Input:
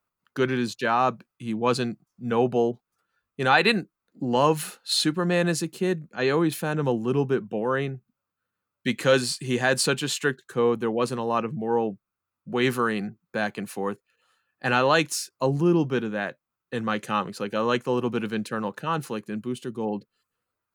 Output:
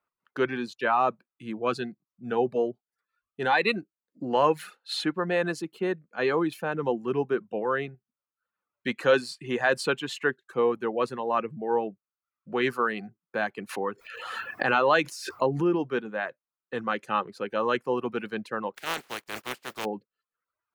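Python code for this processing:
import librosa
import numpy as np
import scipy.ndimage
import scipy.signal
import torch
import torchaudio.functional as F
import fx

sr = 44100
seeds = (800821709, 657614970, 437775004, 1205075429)

y = fx.notch_cascade(x, sr, direction='rising', hz=1.9, at=(1.61, 4.29), fade=0.02)
y = fx.pre_swell(y, sr, db_per_s=31.0, at=(13.69, 15.76))
y = fx.spec_flatten(y, sr, power=0.2, at=(18.74, 19.84), fade=0.02)
y = fx.dereverb_blind(y, sr, rt60_s=0.62)
y = fx.bass_treble(y, sr, bass_db=-10, treble_db=-14)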